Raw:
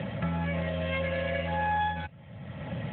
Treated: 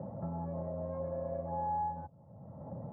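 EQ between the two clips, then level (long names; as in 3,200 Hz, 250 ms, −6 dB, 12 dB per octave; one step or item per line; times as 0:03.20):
Butterworth low-pass 1,000 Hz 36 dB per octave
low-shelf EQ 240 Hz −6 dB
−4.5 dB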